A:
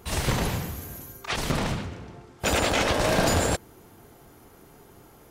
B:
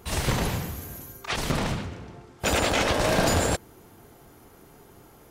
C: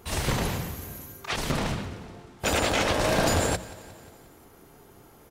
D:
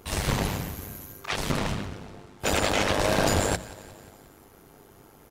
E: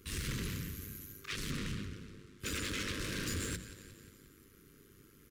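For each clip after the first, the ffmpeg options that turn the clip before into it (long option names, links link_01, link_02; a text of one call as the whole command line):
ffmpeg -i in.wav -af anull out.wav
ffmpeg -i in.wav -af "bandreject=frequency=60:width_type=h:width=6,bandreject=frequency=120:width_type=h:width=6,bandreject=frequency=180:width_type=h:width=6,aecho=1:1:178|356|534|712|890:0.112|0.0673|0.0404|0.0242|0.0145,volume=-1dB" out.wav
ffmpeg -i in.wav -af "tremolo=f=100:d=0.667,volume=3dB" out.wav
ffmpeg -i in.wav -af "asoftclip=type=tanh:threshold=-25.5dB,asuperstop=centerf=750:order=4:qfactor=0.75,volume=-6dB" out.wav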